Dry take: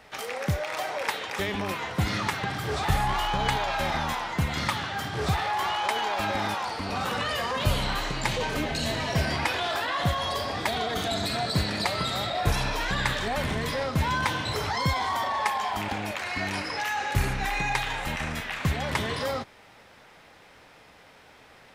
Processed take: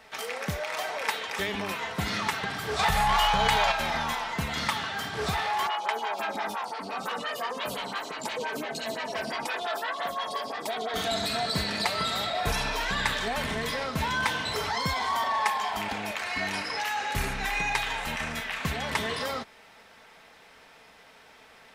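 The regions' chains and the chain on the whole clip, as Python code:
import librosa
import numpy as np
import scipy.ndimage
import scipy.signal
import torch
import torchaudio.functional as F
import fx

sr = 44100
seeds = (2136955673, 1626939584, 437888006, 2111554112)

y = fx.chain(x, sr, fx.peak_eq(hz=290.0, db=-14.5, octaves=0.28),
    fx.notch(hz=370.0, q=6.1),
    fx.env_flatten(amount_pct=70), at=(2.79, 3.72))
y = fx.chain(y, sr, fx.highpass(hz=160.0, slope=12),
    fx.stagger_phaser(hz=5.8), at=(5.67, 10.94))
y = fx.low_shelf(y, sr, hz=420.0, db=-6.0)
y = y + 0.37 * np.pad(y, (int(4.5 * sr / 1000.0), 0))[:len(y)]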